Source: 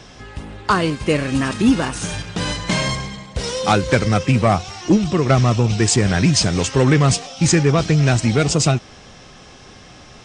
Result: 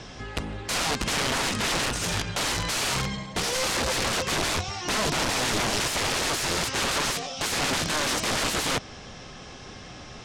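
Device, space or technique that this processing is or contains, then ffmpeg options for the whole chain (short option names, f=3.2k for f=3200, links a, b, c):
overflowing digital effects unit: -af "aeval=exprs='(mod(10*val(0)+1,2)-1)/10':c=same,lowpass=8.1k"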